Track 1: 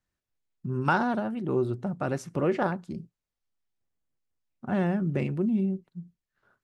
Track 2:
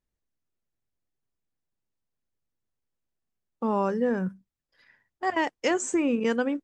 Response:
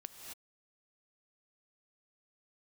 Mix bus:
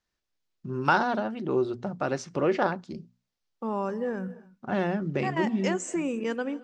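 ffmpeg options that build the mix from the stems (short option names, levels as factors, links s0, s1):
-filter_complex "[0:a]lowpass=f=5700:w=0.5412,lowpass=f=5700:w=1.3066,bass=f=250:g=-7,treble=f=4000:g=8,volume=1.33[s0];[1:a]volume=0.501,asplit=2[s1][s2];[s2]volume=0.422[s3];[2:a]atrim=start_sample=2205[s4];[s3][s4]afir=irnorm=-1:irlink=0[s5];[s0][s1][s5]amix=inputs=3:normalize=0,bandreject=f=60:t=h:w=6,bandreject=f=120:t=h:w=6,bandreject=f=180:t=h:w=6,bandreject=f=240:t=h:w=6"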